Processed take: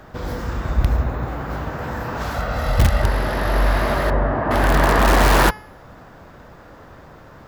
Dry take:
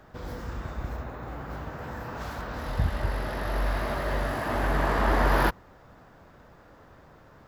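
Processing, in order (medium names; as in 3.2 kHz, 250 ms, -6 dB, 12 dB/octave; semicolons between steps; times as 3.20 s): 0.69–1.26 s: bass shelf 160 Hz +8.5 dB; 2.34–3.02 s: comb 1.5 ms, depth 54%; 4.10–4.51 s: low-pass 1.3 kHz 12 dB/octave; de-hum 426.5 Hz, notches 28; in parallel at -6 dB: integer overflow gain 16.5 dB; on the sum: trim +6.5 dB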